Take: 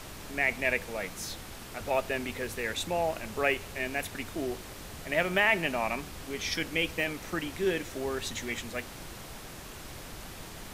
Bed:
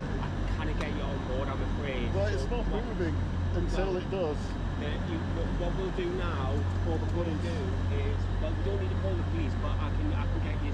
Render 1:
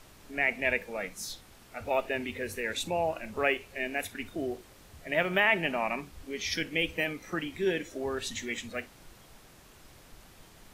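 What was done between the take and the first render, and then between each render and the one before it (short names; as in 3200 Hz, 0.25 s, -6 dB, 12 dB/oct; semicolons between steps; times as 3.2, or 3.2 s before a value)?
noise print and reduce 11 dB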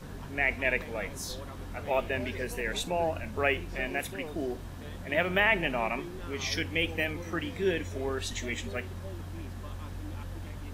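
add bed -10 dB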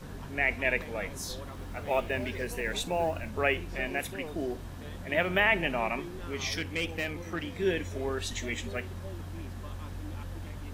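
1.46–3.3 short-mantissa float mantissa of 4-bit; 6.51–7.6 tube stage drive 24 dB, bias 0.4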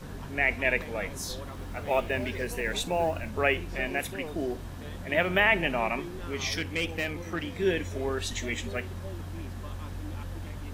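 gain +2 dB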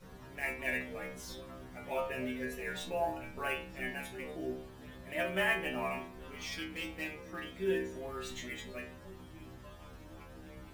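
in parallel at -8 dB: sample-rate reducer 12000 Hz, jitter 20%; on the sum: metallic resonator 62 Hz, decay 0.71 s, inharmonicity 0.002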